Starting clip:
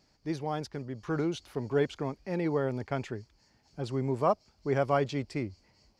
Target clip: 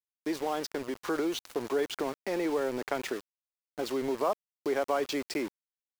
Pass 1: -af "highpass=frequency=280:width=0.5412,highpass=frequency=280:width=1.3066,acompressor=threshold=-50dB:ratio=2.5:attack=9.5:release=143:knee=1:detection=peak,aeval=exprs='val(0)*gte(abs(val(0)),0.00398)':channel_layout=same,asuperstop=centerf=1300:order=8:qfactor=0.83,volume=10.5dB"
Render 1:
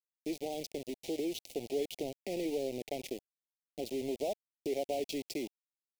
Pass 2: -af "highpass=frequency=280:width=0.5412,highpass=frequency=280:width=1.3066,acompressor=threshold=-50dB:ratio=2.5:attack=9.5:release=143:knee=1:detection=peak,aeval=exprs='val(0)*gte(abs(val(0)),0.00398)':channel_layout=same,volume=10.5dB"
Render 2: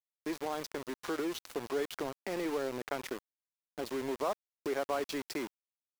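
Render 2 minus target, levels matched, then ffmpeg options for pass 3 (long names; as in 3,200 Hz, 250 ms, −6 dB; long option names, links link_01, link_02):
downward compressor: peak gain reduction +4.5 dB
-af "highpass=frequency=280:width=0.5412,highpass=frequency=280:width=1.3066,acompressor=threshold=-42.5dB:ratio=2.5:attack=9.5:release=143:knee=1:detection=peak,aeval=exprs='val(0)*gte(abs(val(0)),0.00398)':channel_layout=same,volume=10.5dB"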